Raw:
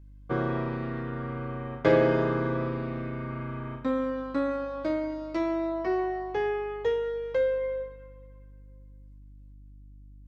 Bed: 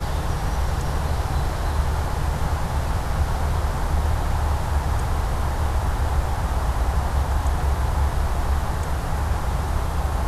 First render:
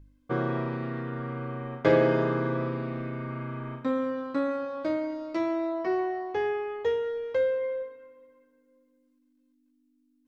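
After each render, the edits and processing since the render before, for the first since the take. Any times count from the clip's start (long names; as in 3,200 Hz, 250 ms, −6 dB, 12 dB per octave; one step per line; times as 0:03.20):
hum removal 50 Hz, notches 4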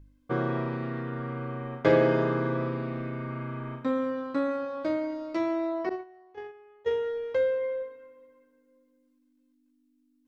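0:05.89–0:06.91: noise gate −26 dBFS, range −21 dB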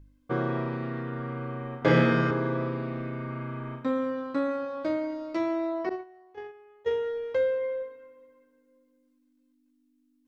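0:01.79–0:02.31: flutter between parallel walls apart 5.1 metres, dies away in 1.1 s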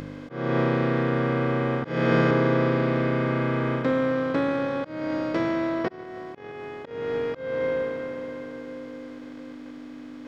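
compressor on every frequency bin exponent 0.4
volume swells 299 ms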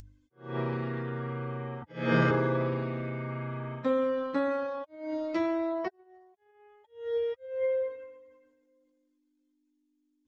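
spectral dynamics exaggerated over time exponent 3
transient designer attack 0 dB, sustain +6 dB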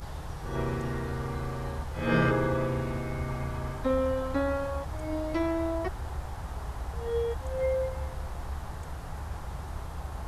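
mix in bed −14 dB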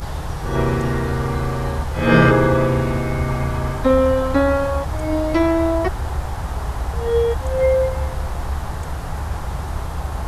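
level +12 dB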